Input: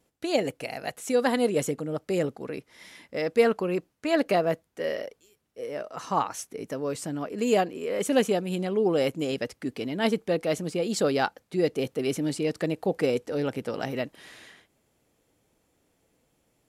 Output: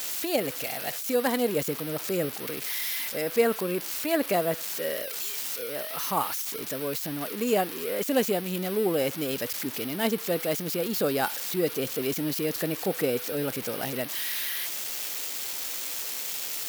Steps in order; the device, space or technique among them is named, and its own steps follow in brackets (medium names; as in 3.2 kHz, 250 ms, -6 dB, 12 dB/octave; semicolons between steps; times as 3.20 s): budget class-D amplifier (dead-time distortion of 0.067 ms; zero-crossing glitches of -16 dBFS); trim -2 dB